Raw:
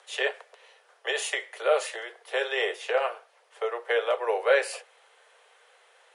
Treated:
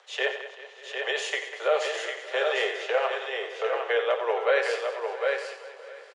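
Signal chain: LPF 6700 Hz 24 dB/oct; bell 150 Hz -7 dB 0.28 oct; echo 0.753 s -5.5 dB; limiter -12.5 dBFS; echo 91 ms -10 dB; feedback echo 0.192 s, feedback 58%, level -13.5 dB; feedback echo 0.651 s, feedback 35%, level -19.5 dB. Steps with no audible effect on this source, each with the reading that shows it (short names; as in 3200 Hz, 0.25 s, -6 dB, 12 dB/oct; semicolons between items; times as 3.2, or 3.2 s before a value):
bell 150 Hz: input band starts at 340 Hz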